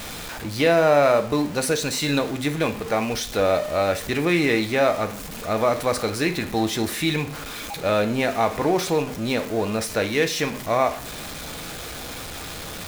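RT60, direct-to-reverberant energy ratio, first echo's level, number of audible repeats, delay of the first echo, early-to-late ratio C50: 0.50 s, 6.5 dB, no echo, no echo, no echo, 14.0 dB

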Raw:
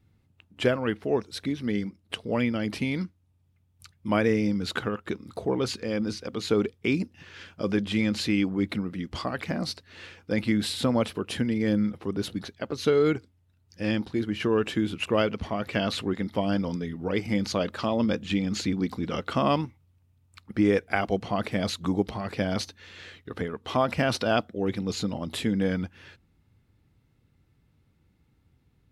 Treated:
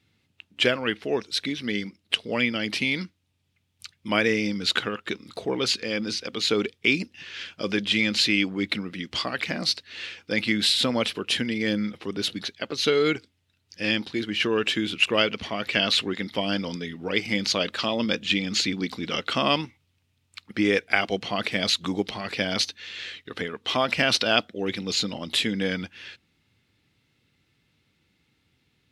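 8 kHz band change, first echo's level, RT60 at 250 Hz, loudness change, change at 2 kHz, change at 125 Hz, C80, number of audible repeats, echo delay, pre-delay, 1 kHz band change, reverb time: +7.0 dB, no echo, no reverb, +3.0 dB, +8.0 dB, -4.5 dB, no reverb, no echo, no echo, no reverb, +0.5 dB, no reverb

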